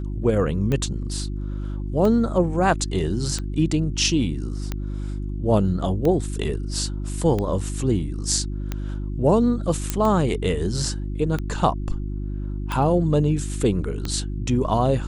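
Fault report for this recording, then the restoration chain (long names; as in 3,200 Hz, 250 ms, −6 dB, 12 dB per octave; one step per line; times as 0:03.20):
mains hum 50 Hz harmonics 7 −28 dBFS
scratch tick 45 rpm −13 dBFS
0:09.90: click −7 dBFS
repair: click removal
hum removal 50 Hz, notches 7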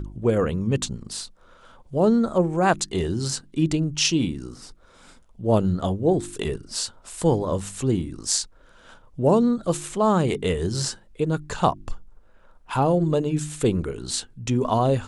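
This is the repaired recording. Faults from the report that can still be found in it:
0:09.90: click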